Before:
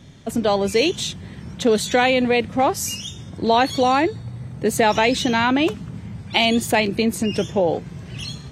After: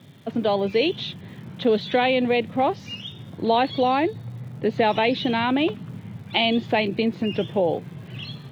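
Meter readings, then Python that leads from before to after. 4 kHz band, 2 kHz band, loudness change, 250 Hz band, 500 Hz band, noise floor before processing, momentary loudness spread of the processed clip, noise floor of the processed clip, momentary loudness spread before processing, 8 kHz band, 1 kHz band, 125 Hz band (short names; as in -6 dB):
-3.5 dB, -5.0 dB, -3.0 dB, -3.0 dB, -2.5 dB, -38 dBFS, 15 LU, -42 dBFS, 16 LU, under -25 dB, -3.5 dB, -3.0 dB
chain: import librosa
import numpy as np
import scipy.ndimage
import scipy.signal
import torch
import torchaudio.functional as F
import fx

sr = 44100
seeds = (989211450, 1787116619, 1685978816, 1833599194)

y = scipy.signal.sosfilt(scipy.signal.ellip(3, 1.0, 40, [110.0, 3600.0], 'bandpass', fs=sr, output='sos'), x)
y = fx.dmg_crackle(y, sr, seeds[0], per_s=300.0, level_db=-44.0)
y = fx.dynamic_eq(y, sr, hz=1400.0, q=1.6, threshold_db=-34.0, ratio=4.0, max_db=-5)
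y = y * 10.0 ** (-2.0 / 20.0)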